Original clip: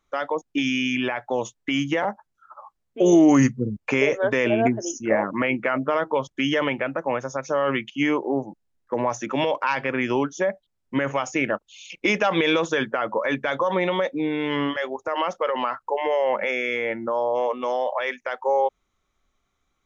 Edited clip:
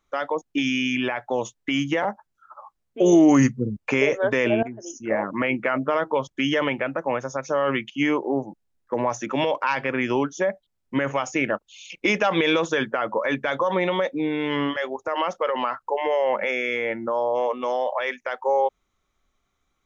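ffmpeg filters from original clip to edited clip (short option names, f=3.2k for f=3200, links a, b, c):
-filter_complex "[0:a]asplit=2[a][b];[a]atrim=end=4.63,asetpts=PTS-STARTPTS,afade=t=out:st=4.626:d=0.004:c=hsin:silence=0.11885[c];[b]atrim=start=4.63,asetpts=PTS-STARTPTS,afade=t=in:d=1.09:c=qsin:silence=0.11885[d];[c][d]concat=n=2:v=0:a=1"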